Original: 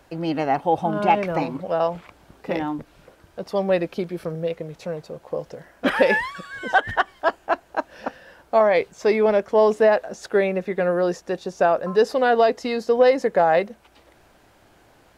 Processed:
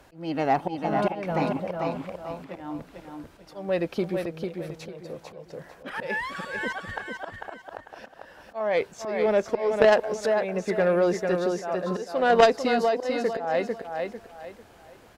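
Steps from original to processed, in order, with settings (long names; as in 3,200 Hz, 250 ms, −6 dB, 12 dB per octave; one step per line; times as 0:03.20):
volume swells 371 ms
repeating echo 447 ms, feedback 29%, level −5.5 dB
harmonic generator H 3 −10 dB, 5 −19 dB, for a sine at −7.5 dBFS
level +4.5 dB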